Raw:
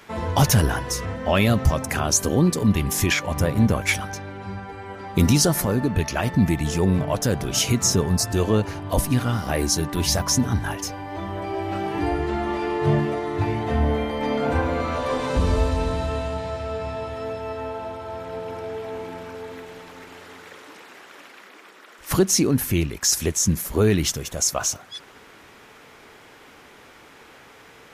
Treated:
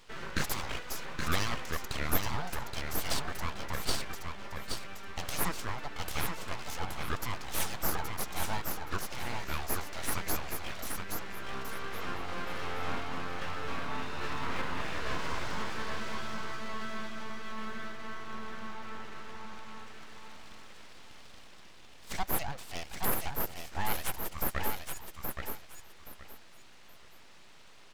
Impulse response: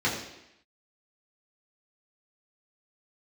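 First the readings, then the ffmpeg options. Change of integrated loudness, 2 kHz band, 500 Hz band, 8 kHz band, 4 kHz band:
-14.5 dB, -7.5 dB, -17.5 dB, -16.5 dB, -11.0 dB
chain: -af "aresample=16000,aresample=44100,highpass=f=400:w=0.5412,highpass=f=400:w=1.3066,aeval=exprs='abs(val(0))':c=same,aecho=1:1:823|1646|2469:0.562|0.129|0.0297,volume=-7dB"

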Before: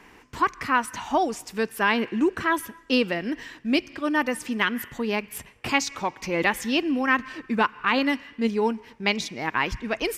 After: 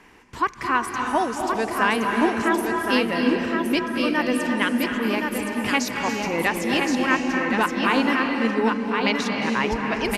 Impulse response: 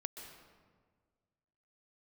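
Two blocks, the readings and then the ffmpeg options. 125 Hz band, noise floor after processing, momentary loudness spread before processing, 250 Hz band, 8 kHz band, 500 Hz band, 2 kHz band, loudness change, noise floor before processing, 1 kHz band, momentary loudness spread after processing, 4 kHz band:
+3.5 dB, -35 dBFS, 7 LU, +4.0 dB, +2.0 dB, +3.0 dB, +2.5 dB, +3.0 dB, -52 dBFS, +3.0 dB, 4 LU, +2.0 dB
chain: -filter_complex "[0:a]aecho=1:1:1070:0.596[a];[1:a]atrim=start_sample=2205,asetrate=24255,aresample=44100[b];[a][b]afir=irnorm=-1:irlink=0"

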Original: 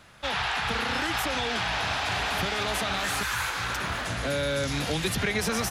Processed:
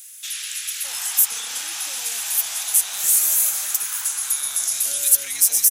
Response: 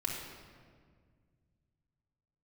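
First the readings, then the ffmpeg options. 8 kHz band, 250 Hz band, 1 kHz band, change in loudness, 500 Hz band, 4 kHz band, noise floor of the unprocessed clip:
+19.0 dB, under -20 dB, -12.0 dB, +8.5 dB, under -15 dB, +0.5 dB, -33 dBFS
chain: -filter_complex "[0:a]aderivative,acrossover=split=1700[a][b];[a]adelay=610[c];[c][b]amix=inputs=2:normalize=0,asplit=2[d][e];[e]acompressor=threshold=-48dB:ratio=6,volume=2.5dB[f];[d][f]amix=inputs=2:normalize=0,aexciter=amount=5.1:drive=5:freq=6.2k,volume=3.5dB"

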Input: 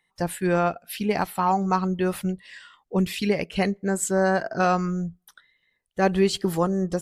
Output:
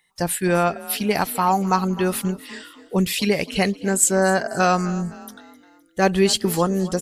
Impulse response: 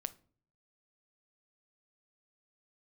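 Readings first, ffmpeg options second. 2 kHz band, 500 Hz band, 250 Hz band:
+4.5 dB, +3.0 dB, +2.5 dB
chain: -filter_complex "[0:a]highshelf=f=3.4k:g=9.5,asplit=5[a][b][c][d][e];[b]adelay=258,afreqshift=37,volume=-18.5dB[f];[c]adelay=516,afreqshift=74,volume=-25.2dB[g];[d]adelay=774,afreqshift=111,volume=-32dB[h];[e]adelay=1032,afreqshift=148,volume=-38.7dB[i];[a][f][g][h][i]amix=inputs=5:normalize=0,volume=2.5dB"

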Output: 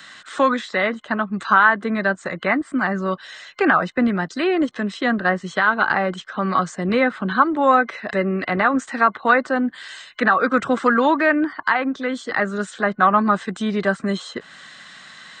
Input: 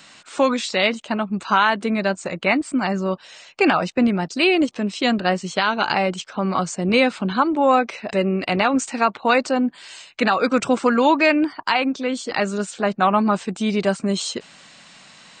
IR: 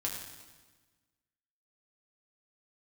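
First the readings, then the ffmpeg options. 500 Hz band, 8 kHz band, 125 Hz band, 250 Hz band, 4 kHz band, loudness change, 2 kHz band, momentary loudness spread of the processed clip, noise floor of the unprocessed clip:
-1.0 dB, -9.0 dB, -1.0 dB, -1.0 dB, -7.0 dB, +0.5 dB, +3.5 dB, 8 LU, -47 dBFS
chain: -filter_complex "[0:a]superequalizer=10b=2.24:11b=3.55:13b=2,acrossover=split=320|1800[a][b][c];[c]acompressor=threshold=-35dB:ratio=6[d];[a][b][d]amix=inputs=3:normalize=0,volume=-1dB"

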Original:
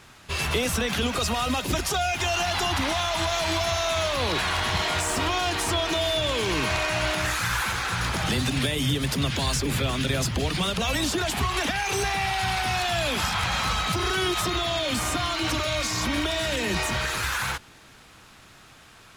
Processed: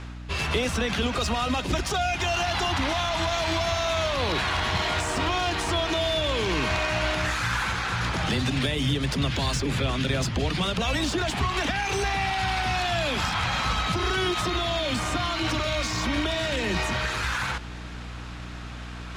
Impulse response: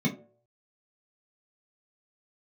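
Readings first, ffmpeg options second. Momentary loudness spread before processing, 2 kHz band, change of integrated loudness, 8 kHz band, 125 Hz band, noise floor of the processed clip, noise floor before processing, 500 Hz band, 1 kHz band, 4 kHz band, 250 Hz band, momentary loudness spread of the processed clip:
2 LU, -0.5 dB, -0.5 dB, -5.0 dB, +0.5 dB, -37 dBFS, -51 dBFS, 0.0 dB, 0.0 dB, -1.5 dB, +0.5 dB, 2 LU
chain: -af "areverse,acompressor=mode=upward:threshold=-31dB:ratio=2.5,areverse,aeval=exprs='val(0)+0.0141*(sin(2*PI*60*n/s)+sin(2*PI*2*60*n/s)/2+sin(2*PI*3*60*n/s)/3+sin(2*PI*4*60*n/s)/4+sin(2*PI*5*60*n/s)/5)':c=same,adynamicsmooth=sensitivity=2:basefreq=5.8k"

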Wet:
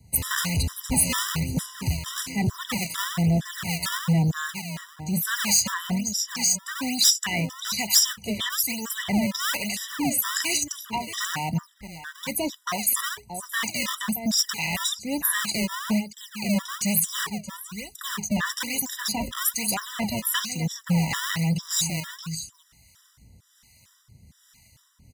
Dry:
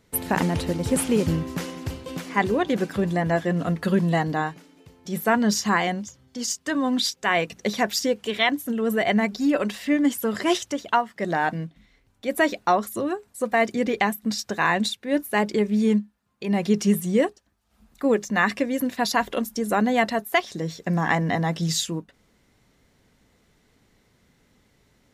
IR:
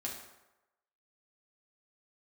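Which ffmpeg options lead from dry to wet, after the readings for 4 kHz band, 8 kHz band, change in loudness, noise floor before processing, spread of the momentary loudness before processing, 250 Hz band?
+4.5 dB, +9.0 dB, -1.0 dB, -64 dBFS, 8 LU, -4.5 dB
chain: -filter_complex "[0:a]bass=f=250:g=14,treble=f=4k:g=12,aecho=1:1:625:0.2,acrossover=split=130|590|5700[a][b][c][d];[b]acrusher=samples=32:mix=1:aa=0.000001:lfo=1:lforange=51.2:lforate=1.1[e];[a][e][c][d]amix=inputs=4:normalize=0,asoftclip=type=tanh:threshold=-15.5dB,highpass=69,equalizer=f=360:t=o:w=2.6:g=-13.5,acrossover=split=910[f][g];[f]aeval=exprs='val(0)*(1-0.7/2+0.7/2*cos(2*PI*1.2*n/s))':c=same[h];[g]aeval=exprs='val(0)*(1-0.7/2-0.7/2*cos(2*PI*1.2*n/s))':c=same[i];[h][i]amix=inputs=2:normalize=0,afftfilt=real='re*gt(sin(2*PI*2.2*pts/sr)*(1-2*mod(floor(b*sr/1024/990),2)),0)':imag='im*gt(sin(2*PI*2.2*pts/sr)*(1-2*mod(floor(b*sr/1024/990),2)),0)':win_size=1024:overlap=0.75,volume=7.5dB"

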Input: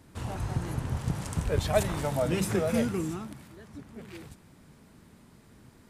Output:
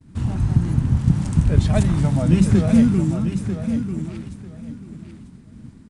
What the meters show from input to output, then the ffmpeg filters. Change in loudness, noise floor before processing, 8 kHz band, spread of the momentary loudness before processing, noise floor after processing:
+11.0 dB, -57 dBFS, +1.5 dB, 19 LU, -45 dBFS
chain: -filter_complex "[0:a]asplit=2[a][b];[b]aecho=0:1:944|1888|2832:0.376|0.0789|0.0166[c];[a][c]amix=inputs=2:normalize=0,agate=range=-33dB:threshold=-51dB:ratio=3:detection=peak,aresample=22050,aresample=44100,lowshelf=f=330:t=q:w=1.5:g=11,volume=1.5dB"

